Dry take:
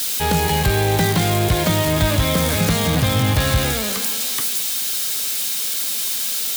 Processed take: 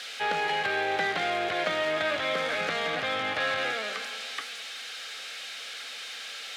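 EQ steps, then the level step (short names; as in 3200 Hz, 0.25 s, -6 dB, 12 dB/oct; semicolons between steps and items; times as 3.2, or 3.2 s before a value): BPF 760–2200 Hz; bell 980 Hz -14 dB 0.29 oct; 0.0 dB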